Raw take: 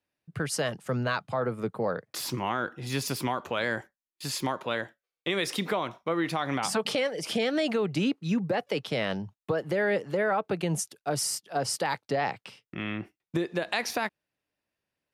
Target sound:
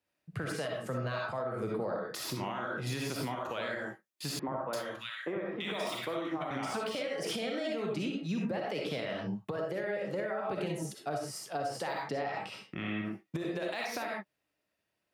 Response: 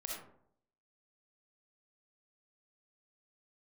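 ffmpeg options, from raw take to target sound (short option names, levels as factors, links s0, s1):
-filter_complex "[0:a]deesser=0.75[s0];[1:a]atrim=start_sample=2205,afade=t=out:st=0.2:d=0.01,atrim=end_sample=9261[s1];[s0][s1]afir=irnorm=-1:irlink=0,acompressor=threshold=0.0224:ratio=6,highpass=47,asettb=1/sr,asplit=3[s2][s3][s4];[s2]atrim=end=4.394[s5];[s3]atrim=start=4.39:end=6.51,asetpts=PTS-STARTPTS,afade=t=in:d=0.004:c=qsin,afade=t=out:st=2.116:d=0.004:c=qsin,acrossover=split=180|1600[s6][s7][s8];[s6]adelay=90[s9];[s8]adelay=340[s10];[s9][s7][s10]amix=inputs=3:normalize=0,atrim=end_sample=93492[s11];[s4]atrim=start=6.506[s12];[s5][s11]acrossfade=d=0.004:c1=hsin:c2=qsin[s13];[s13][s12]acrossfade=d=0.004:c1=qsin:c2=hsin,alimiter=level_in=1.88:limit=0.0631:level=0:latency=1:release=200,volume=0.531,volume=1.58"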